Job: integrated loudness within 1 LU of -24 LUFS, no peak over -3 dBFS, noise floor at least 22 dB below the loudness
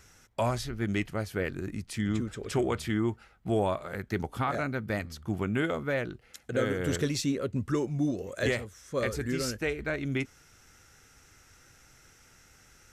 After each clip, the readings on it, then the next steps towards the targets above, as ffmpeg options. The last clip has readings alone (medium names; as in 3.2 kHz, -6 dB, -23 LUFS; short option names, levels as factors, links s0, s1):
loudness -31.5 LUFS; peak level -17.0 dBFS; loudness target -24.0 LUFS
-> -af "volume=2.37"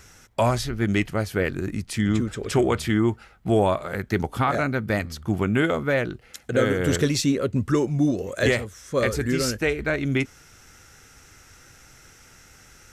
loudness -24.0 LUFS; peak level -9.5 dBFS; noise floor -52 dBFS